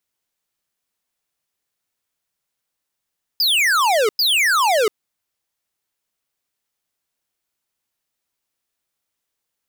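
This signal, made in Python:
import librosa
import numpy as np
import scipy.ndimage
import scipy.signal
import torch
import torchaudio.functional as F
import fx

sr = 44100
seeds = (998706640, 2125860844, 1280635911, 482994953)

y = fx.laser_zaps(sr, level_db=-16, start_hz=5100.0, end_hz=400.0, length_s=0.69, wave='square', shots=2, gap_s=0.1)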